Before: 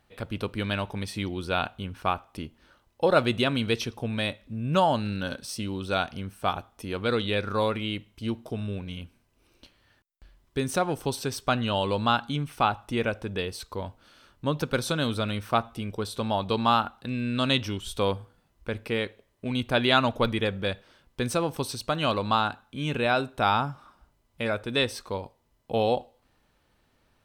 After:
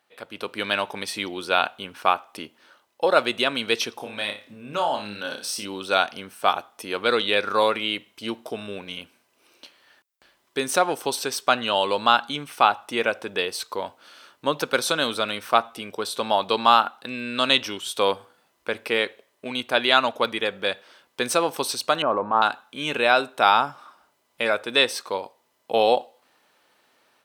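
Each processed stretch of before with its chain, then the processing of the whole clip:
0:03.97–0:05.65: downward compressor 2 to 1, threshold −35 dBFS + flutter between parallel walls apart 5 metres, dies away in 0.3 s
0:22.02–0:22.42: low-pass filter 1,300 Hz 24 dB per octave + transient designer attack −8 dB, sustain +3 dB
whole clip: Bessel high-pass filter 510 Hz, order 2; automatic gain control gain up to 8.5 dB

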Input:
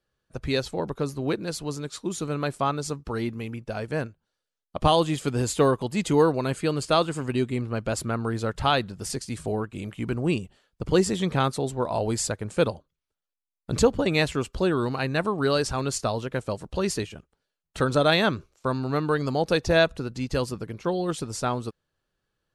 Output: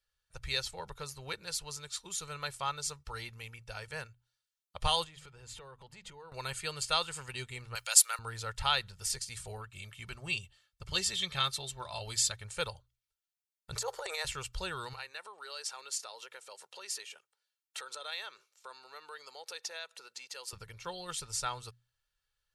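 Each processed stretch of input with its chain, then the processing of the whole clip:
0:05.04–0:06.32: low-pass filter 1,500 Hz 6 dB per octave + mains-hum notches 50/100/150/200/250 Hz + downward compressor 4 to 1, threshold −35 dBFS
0:07.75–0:08.19: inverse Chebyshev high-pass filter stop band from 240 Hz + spectral tilt +4.5 dB per octave
0:09.57–0:12.44: notch filter 790 Hz + dynamic equaliser 3,500 Hz, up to +7 dB, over −49 dBFS, Q 1.6 + notch comb filter 480 Hz
0:13.75–0:14.25: elliptic high-pass filter 400 Hz + parametric band 2,800 Hz −11.5 dB 1 octave + transient designer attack −7 dB, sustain +11 dB
0:14.93–0:20.53: downward compressor 4 to 1, threshold −31 dBFS + high-pass filter 330 Hz 24 dB per octave
whole clip: guitar amp tone stack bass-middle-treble 10-0-10; mains-hum notches 60/120 Hz; comb filter 2.2 ms, depth 39%

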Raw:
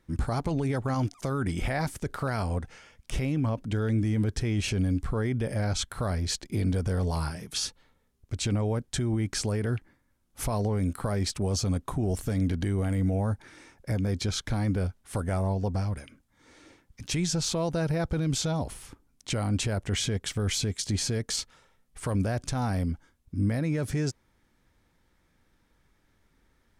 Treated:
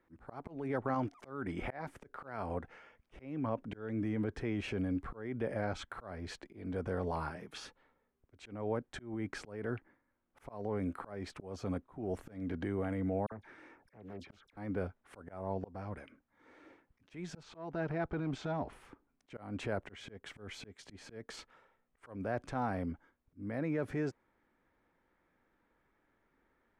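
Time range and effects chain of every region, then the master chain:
0:13.26–0:14.57: downward compressor 2 to 1, threshold −41 dBFS + all-pass dispersion lows, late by 55 ms, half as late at 2,100 Hz + highs frequency-modulated by the lows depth 0.56 ms
0:17.43–0:18.73: notch filter 520 Hz, Q 5.4 + hard clipping −22 dBFS + high-frequency loss of the air 68 metres
whole clip: three-way crossover with the lows and the highs turned down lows −13 dB, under 240 Hz, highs −21 dB, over 2,400 Hz; volume swells 279 ms; level −2 dB

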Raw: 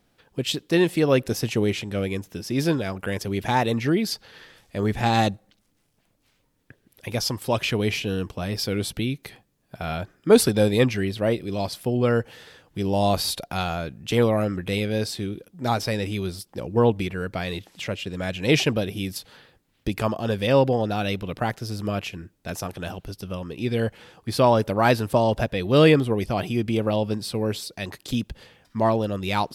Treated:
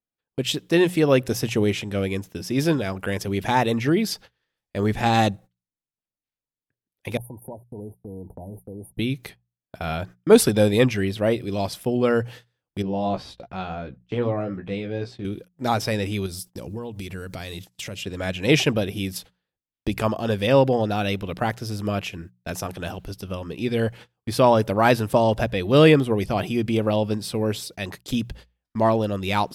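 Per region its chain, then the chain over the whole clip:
0:07.17–0:08.99: downward compressor 8 to 1, threshold −34 dBFS + linear-phase brick-wall band-stop 990–8,800 Hz
0:12.82–0:15.25: flanger 1.1 Hz, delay 3.6 ms, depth 2.9 ms, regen −86% + head-to-tape spacing loss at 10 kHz 25 dB + double-tracking delay 16 ms −5 dB
0:16.26–0:18.03: bass and treble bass +4 dB, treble +11 dB + downward compressor, threshold −31 dBFS
whole clip: noise gate −41 dBFS, range −32 dB; mains-hum notches 60/120/180 Hz; dynamic equaliser 4,400 Hz, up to −5 dB, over −50 dBFS, Q 6.7; level +1.5 dB

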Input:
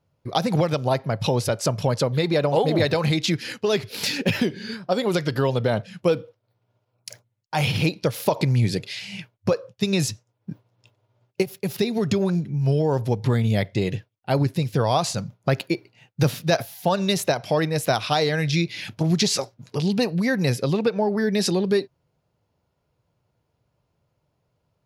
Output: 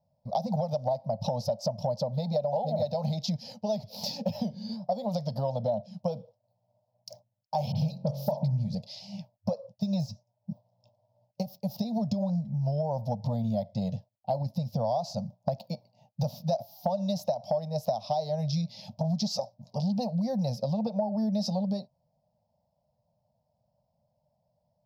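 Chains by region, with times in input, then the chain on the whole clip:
0:02.15–0:03.87: Butterworth band-reject 1,100 Hz, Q 7.3 + one half of a high-frequency compander decoder only
0:07.72–0:08.75: parametric band 140 Hz +14.5 dB 0.31 octaves + hum removal 45.77 Hz, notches 32 + all-pass dispersion highs, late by 41 ms, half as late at 2,400 Hz
0:09.75–0:10.50: de-essing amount 60% + notch comb filter 260 Hz
whole clip: drawn EQ curve 110 Hz 0 dB, 220 Hz +8 dB, 350 Hz −28 dB, 600 Hz +14 dB, 890 Hz +6 dB, 1,500 Hz −27 dB, 2,400 Hz −19 dB, 5,200 Hz +4 dB, 9,200 Hz −21 dB, 14,000 Hz +2 dB; downward compressor 6 to 1, threshold −18 dBFS; level −7.5 dB

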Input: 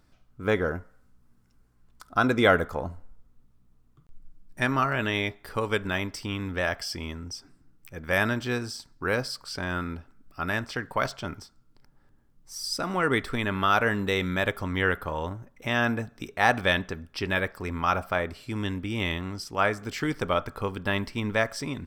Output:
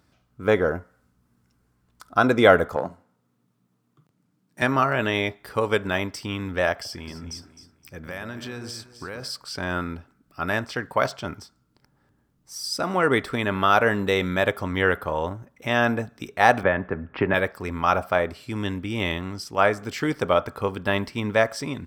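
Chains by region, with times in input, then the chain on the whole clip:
0:02.76–0:04.62: phase distortion by the signal itself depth 0.11 ms + high-pass filter 130 Hz 24 dB per octave
0:06.72–0:09.23: downward compressor, threshold −33 dBFS + delay that swaps between a low-pass and a high-pass 130 ms, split 990 Hz, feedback 56%, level −7.5 dB
0:16.63–0:17.34: low-pass filter 2,000 Hz 24 dB per octave + multiband upward and downward compressor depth 100%
whole clip: high-pass filter 70 Hz; dynamic equaliser 600 Hz, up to +5 dB, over −36 dBFS, Q 1; level +2 dB

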